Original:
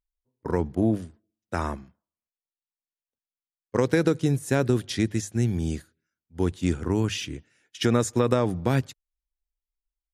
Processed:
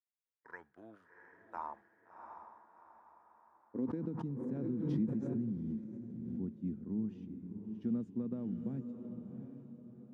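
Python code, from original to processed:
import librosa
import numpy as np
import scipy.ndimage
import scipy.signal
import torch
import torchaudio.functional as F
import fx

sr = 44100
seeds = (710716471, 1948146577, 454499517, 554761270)

y = fx.filter_sweep_bandpass(x, sr, from_hz=2100.0, to_hz=210.0, start_s=0.22, end_s=4.17, q=5.5)
y = fx.echo_diffused(y, sr, ms=707, feedback_pct=41, wet_db=-7.0)
y = fx.pre_swell(y, sr, db_per_s=30.0, at=(3.82, 6.45))
y = y * 10.0 ** (-5.0 / 20.0)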